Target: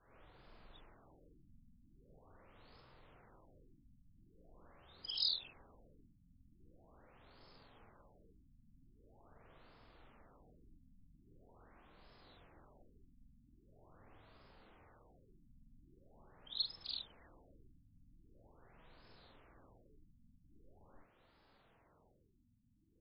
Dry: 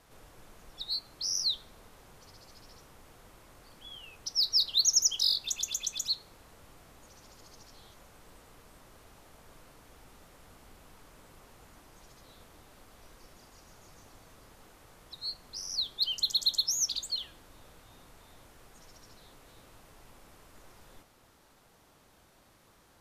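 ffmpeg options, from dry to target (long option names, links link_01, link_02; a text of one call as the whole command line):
ffmpeg -i in.wav -af "afftfilt=real='re':imag='-im':win_size=4096:overlap=0.75,afftfilt=real='re*lt(b*sr/1024,260*pow(5300/260,0.5+0.5*sin(2*PI*0.43*pts/sr)))':imag='im*lt(b*sr/1024,260*pow(5300/260,0.5+0.5*sin(2*PI*0.43*pts/sr)))':win_size=1024:overlap=0.75,volume=-2.5dB" out.wav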